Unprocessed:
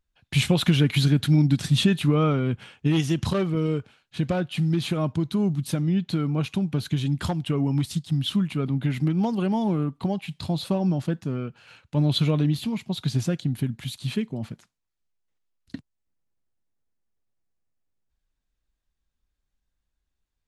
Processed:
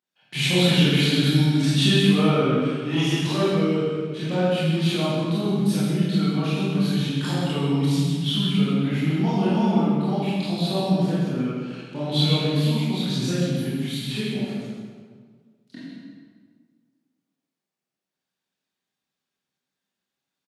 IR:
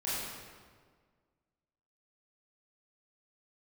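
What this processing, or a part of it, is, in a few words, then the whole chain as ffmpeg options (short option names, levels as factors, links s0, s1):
PA in a hall: -filter_complex "[0:a]highpass=f=160:w=0.5412,highpass=f=160:w=1.3066,equalizer=f=3700:t=o:w=1.7:g=4,aecho=1:1:129:0.376[s0];[1:a]atrim=start_sample=2205[s1];[s0][s1]afir=irnorm=-1:irlink=0,volume=0.708"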